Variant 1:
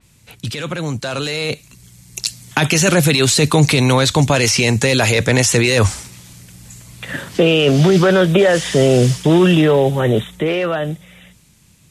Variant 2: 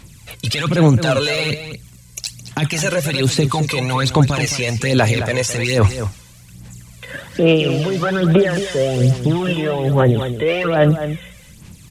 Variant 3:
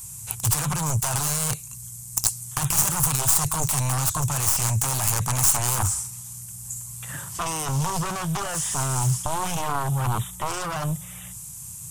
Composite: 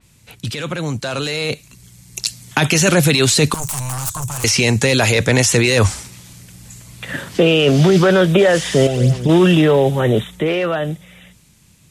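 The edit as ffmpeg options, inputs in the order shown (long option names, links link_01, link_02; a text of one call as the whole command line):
ffmpeg -i take0.wav -i take1.wav -i take2.wav -filter_complex "[0:a]asplit=3[link_01][link_02][link_03];[link_01]atrim=end=3.542[link_04];[2:a]atrim=start=3.538:end=4.442[link_05];[link_02]atrim=start=4.438:end=8.872[link_06];[1:a]atrim=start=8.868:end=9.292[link_07];[link_03]atrim=start=9.288[link_08];[link_04][link_05]acrossfade=duration=0.004:curve1=hsin:curve2=hsin[link_09];[link_09][link_06]acrossfade=duration=0.004:curve1=hsin:curve2=hsin[link_10];[link_10][link_07]acrossfade=duration=0.004:curve1=hsin:curve2=hsin[link_11];[link_11][link_08]acrossfade=duration=0.004:curve1=hsin:curve2=hsin" out.wav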